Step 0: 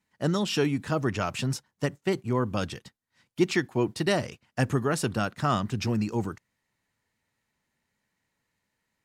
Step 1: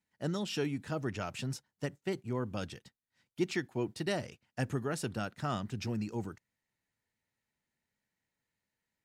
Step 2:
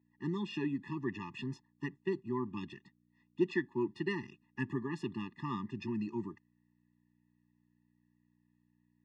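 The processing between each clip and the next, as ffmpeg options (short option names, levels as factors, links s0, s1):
-af "equalizer=f=1100:t=o:w=0.32:g=-5,volume=0.376"
-af "aeval=exprs='val(0)+0.000562*(sin(2*PI*60*n/s)+sin(2*PI*2*60*n/s)/2+sin(2*PI*3*60*n/s)/3+sin(2*PI*4*60*n/s)/4+sin(2*PI*5*60*n/s)/5)':c=same,highpass=200,lowpass=2700,afftfilt=real='re*eq(mod(floor(b*sr/1024/410),2),0)':imag='im*eq(mod(floor(b*sr/1024/410),2),0)':win_size=1024:overlap=0.75,volume=1.33"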